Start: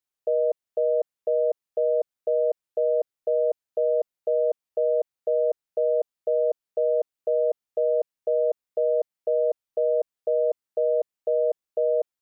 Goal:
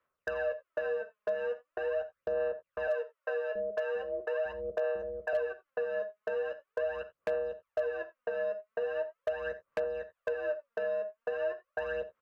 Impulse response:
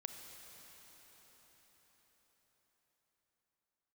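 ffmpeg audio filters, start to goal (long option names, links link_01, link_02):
-filter_complex "[0:a]asoftclip=type=tanh:threshold=-31dB,asettb=1/sr,asplit=3[link_01][link_02][link_03];[link_01]atrim=end=2.874[link_04];[link_02]atrim=start=2.87:end=5.33,asetpts=PTS-STARTPTS,afade=type=in:duration=0.004:curve=qsin,afade=type=out:start_time=2.456:duration=0.004:curve=qsin,acrossover=split=440[link_05][link_06];[link_05]adelay=680[link_07];[link_07][link_06]amix=inputs=2:normalize=0,atrim=end_sample=108486[link_08];[link_03]atrim=start=5.326[link_09];[link_04][link_08]acrossfade=duration=0.004:curve1=hsin:curve2=qsin[link_10];[link_10][link_09]acrossfade=duration=0.004:curve1=qsin:curve2=hsin,acrossover=split=280|640[link_11][link_12][link_13];[link_11]acompressor=threshold=-52dB:ratio=4[link_14];[link_12]acompressor=threshold=-46dB:ratio=4[link_15];[link_13]acompressor=threshold=-44dB:ratio=4[link_16];[link_14][link_15][link_16]amix=inputs=3:normalize=0,aphaser=in_gain=1:out_gain=1:delay=4.8:decay=0.71:speed=0.41:type=sinusoidal,equalizer=frequency=400:width_type=o:width=1.6:gain=10,asplit=2[link_17][link_18];[link_18]adelay=13,volume=-6.5dB[link_19];[link_17][link_19]amix=inputs=2:normalize=0,acompressor=threshold=-31dB:ratio=4,firequalizer=gain_entry='entry(170,0);entry(260,-7);entry(380,-9);entry(550,8);entry(790,-5);entry(1100,15);entry(1800,6);entry(2700,2);entry(4000,-11)':delay=0.05:min_phase=1[link_20];[1:a]atrim=start_sample=2205,atrim=end_sample=3969[link_21];[link_20][link_21]afir=irnorm=-1:irlink=0,aeval=exprs='0.0531*(abs(mod(val(0)/0.0531+3,4)-2)-1)':channel_layout=same,volume=2.5dB"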